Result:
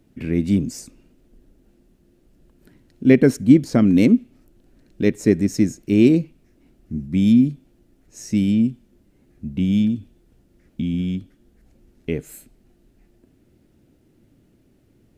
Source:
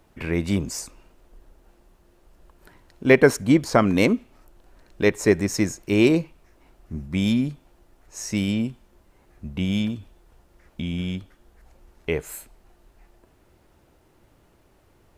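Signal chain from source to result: ten-band graphic EQ 125 Hz +6 dB, 250 Hz +12 dB, 1 kHz -11 dB; trim -4 dB

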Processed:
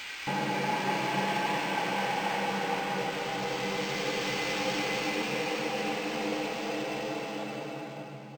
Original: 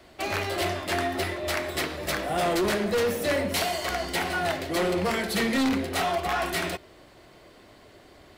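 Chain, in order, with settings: comb filter that takes the minimum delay 0.4 ms; frequency shift +130 Hz; Paulstretch 14×, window 0.25 s, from 6.25 s; bands offset in time highs, lows 270 ms, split 1.8 kHz; decimation joined by straight lines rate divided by 4×

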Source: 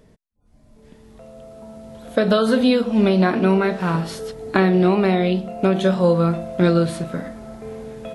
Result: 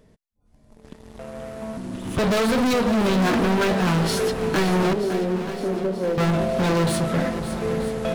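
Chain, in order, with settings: in parallel at -2.5 dB: peak limiter -9.5 dBFS, peak gain reduction 6.5 dB; on the sum: waveshaping leveller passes 2; 1.77–2.19 s: frequency shift -410 Hz; 4.93–6.18 s: ladder band-pass 390 Hz, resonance 30%; overload inside the chain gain 15 dB; on a send: shuffle delay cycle 932 ms, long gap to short 1.5:1, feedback 48%, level -11 dB; on the sum: trim -4 dB

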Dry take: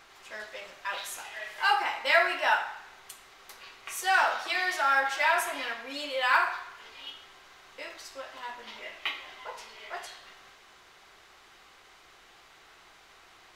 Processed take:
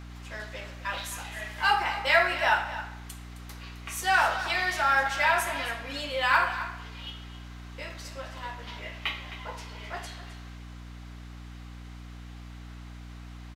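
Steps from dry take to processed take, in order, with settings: delay 263 ms -13.5 dB; hum 60 Hz, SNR 12 dB; trim +1 dB

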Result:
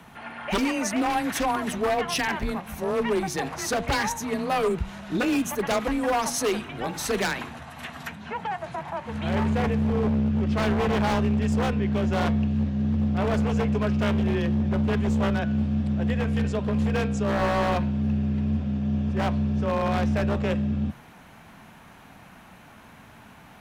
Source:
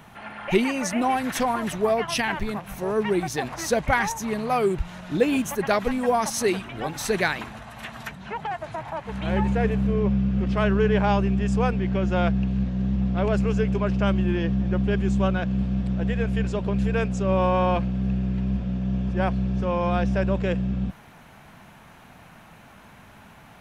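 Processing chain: wavefolder -18 dBFS; de-hum 112.3 Hz, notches 37; frequency shift +20 Hz

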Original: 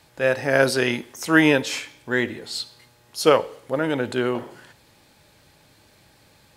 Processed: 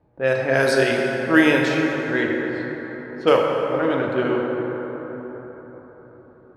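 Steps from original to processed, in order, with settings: level-controlled noise filter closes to 610 Hz, open at -13 dBFS; plate-style reverb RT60 4.7 s, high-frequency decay 0.4×, DRR -0.5 dB; trim -1.5 dB

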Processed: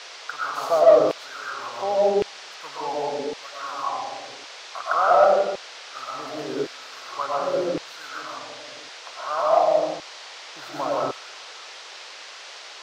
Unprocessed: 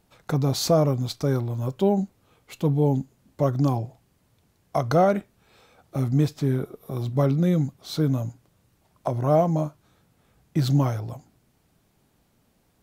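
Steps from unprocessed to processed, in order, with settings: resonant high shelf 1.9 kHz -10.5 dB, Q 3; algorithmic reverb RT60 1.2 s, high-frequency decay 0.45×, pre-delay 75 ms, DRR -4 dB; LFO high-pass saw down 0.9 Hz 400–2800 Hz; in parallel at -7.5 dB: saturation -7 dBFS, distortion -12 dB; on the sum: band noise 440–5500 Hz -33 dBFS; trim -8 dB

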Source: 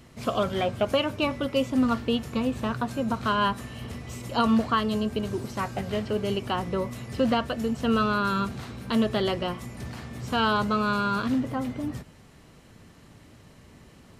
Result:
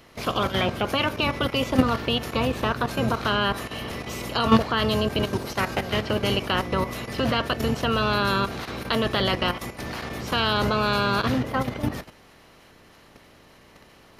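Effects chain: spectral peaks clipped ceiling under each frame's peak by 14 dB; peaking EQ 7.9 kHz -10 dB 0.45 oct; level held to a coarse grid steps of 10 dB; trim +7.5 dB

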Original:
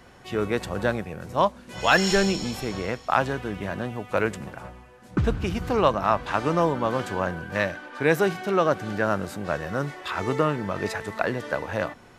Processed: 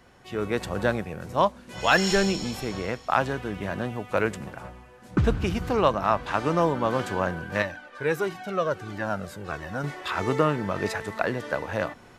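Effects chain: level rider gain up to 7 dB; 7.62–9.84 s: Shepard-style flanger falling 1.5 Hz; trim -5 dB

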